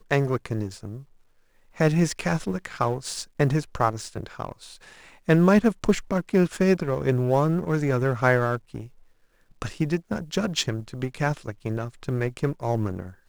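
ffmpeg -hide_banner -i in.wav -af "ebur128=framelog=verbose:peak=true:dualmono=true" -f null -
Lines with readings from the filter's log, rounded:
Integrated loudness:
  I:         -21.9 LUFS
  Threshold: -32.7 LUFS
Loudness range:
  LRA:         6.3 LU
  Threshold: -42.3 LUFS
  LRA low:   -25.9 LUFS
  LRA high:  -19.5 LUFS
True peak:
  Peak:       -5.0 dBFS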